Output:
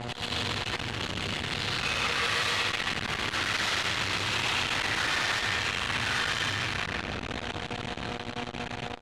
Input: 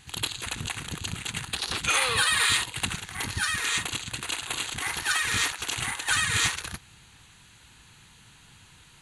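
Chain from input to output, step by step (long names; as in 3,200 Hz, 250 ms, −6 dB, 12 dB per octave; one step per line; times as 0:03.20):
source passing by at 0:04.07, 12 m/s, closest 7.9 metres
downward compressor 2 to 1, threshold −55 dBFS, peak gain reduction 16.5 dB
convolution reverb RT60 2.6 s, pre-delay 5 ms, DRR −10.5 dB
hum with harmonics 120 Hz, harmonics 6, −55 dBFS −1 dB per octave
low-shelf EQ 110 Hz +9.5 dB
sine wavefolder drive 14 dB, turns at −21.5 dBFS
speech leveller within 3 dB
gain into a clipping stage and back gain 33 dB
low-pass filter 3,300 Hz 12 dB per octave
spectral tilt +2 dB per octave
repeating echo 129 ms, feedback 35%, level −3.5 dB
saturating transformer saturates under 640 Hz
level +6.5 dB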